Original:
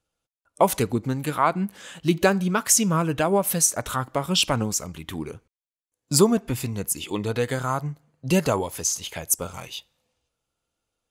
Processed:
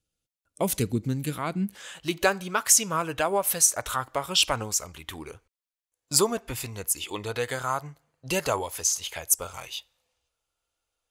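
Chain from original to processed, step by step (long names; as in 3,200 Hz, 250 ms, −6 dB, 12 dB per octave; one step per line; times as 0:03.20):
parametric band 950 Hz −13.5 dB 1.9 octaves, from 0:01.75 190 Hz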